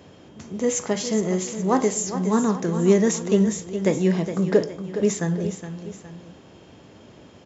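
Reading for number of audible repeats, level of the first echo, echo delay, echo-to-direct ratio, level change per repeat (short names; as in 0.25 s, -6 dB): 2, -10.5 dB, 0.415 s, -9.5 dB, -7.0 dB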